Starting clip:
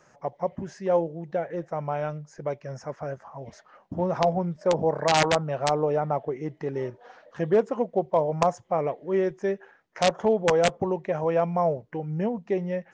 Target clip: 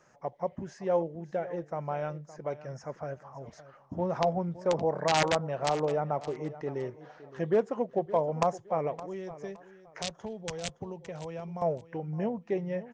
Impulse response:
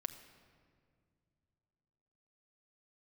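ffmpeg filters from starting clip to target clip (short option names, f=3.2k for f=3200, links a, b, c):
-filter_complex "[0:a]asettb=1/sr,asplit=3[a][b][c];[a]atrim=end=9.034[d];[b]atrim=start=9.03:end=11.62,asetpts=PTS-STARTPTS,afade=t=in:d=0.004:c=qsin,afade=t=out:st=2.586:d=0.004:c=qsin,acrossover=split=150|3000[e][f][g];[f]acompressor=threshold=-36dB:ratio=4[h];[e][h][g]amix=inputs=3:normalize=0[i];[c]atrim=start=11.616[j];[d][i]acrossfade=d=0.004:c1=hsin:c2=qsin[k];[k][j]acrossfade=d=0.004:c1=qsin:c2=hsin,aecho=1:1:566|1132:0.158|0.0396,volume=-4.5dB"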